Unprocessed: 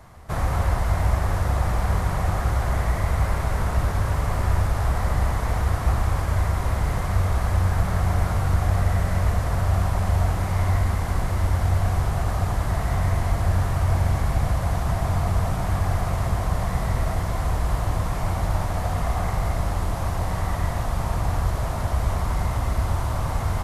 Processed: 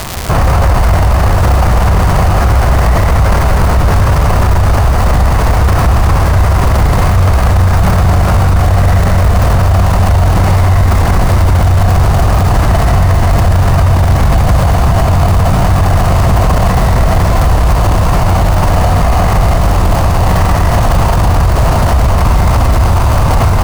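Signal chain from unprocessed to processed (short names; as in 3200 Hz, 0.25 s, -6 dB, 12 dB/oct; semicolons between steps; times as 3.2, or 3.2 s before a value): high shelf 11000 Hz -10.5 dB; crackle 290/s -27 dBFS; in parallel at -6 dB: sample-and-hold 12×; on the sum: maximiser +26 dB; gain -1 dB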